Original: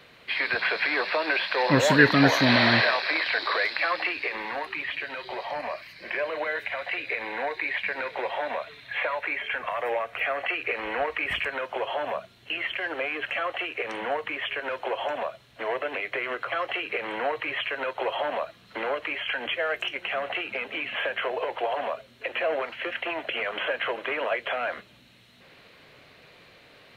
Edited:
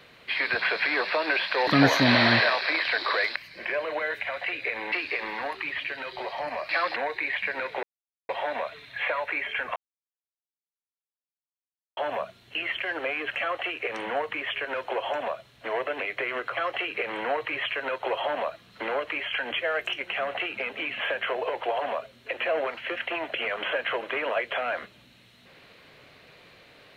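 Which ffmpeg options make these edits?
-filter_complex "[0:a]asplit=9[a][b][c][d][e][f][g][h][i];[a]atrim=end=1.672[j];[b]atrim=start=2.078:end=3.772[k];[c]atrim=start=5.808:end=7.372[l];[d]atrim=start=4.038:end=5.812[m];[e]atrim=start=3.768:end=4.042[n];[f]atrim=start=7.368:end=8.24,asetpts=PTS-STARTPTS,afade=t=out:st=0.868:d=0.004:c=hsin,apad=pad_dur=0.46[o];[g]atrim=start=8.24:end=9.71,asetpts=PTS-STARTPTS,afade=t=in:d=0.004:c=hsin,afade=t=out:st=1.466:d=0.004:c=hsin[p];[h]atrim=start=9.71:end=11.92,asetpts=PTS-STARTPTS,volume=0[q];[i]atrim=start=11.92,asetpts=PTS-STARTPTS,afade=t=in:d=0.004:c=hsin[r];[j][k]acrossfade=d=0.004:c1=hsin:c2=hsin[s];[s][l]acrossfade=d=0.004:c1=hsin:c2=hsin[t];[t][m]acrossfade=d=0.004:c1=hsin:c2=hsin[u];[u][n]acrossfade=d=0.004:c1=hsin:c2=hsin[v];[o][p][q][r]concat=n=4:v=0:a=1[w];[v][w]acrossfade=d=0.004:c1=hsin:c2=hsin"

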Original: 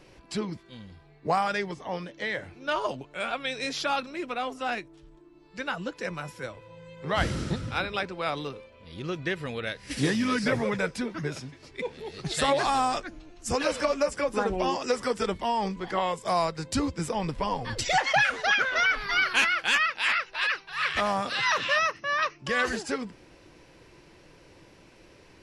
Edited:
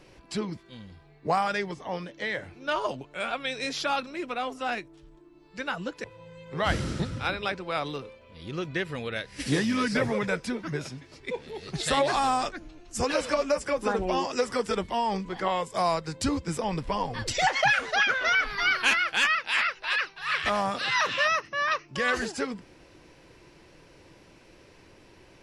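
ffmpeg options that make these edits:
-filter_complex "[0:a]asplit=2[a][b];[a]atrim=end=6.042[c];[b]atrim=start=6.548[d];[c][d]acrossfade=d=0.004:c1=hsin:c2=hsin"

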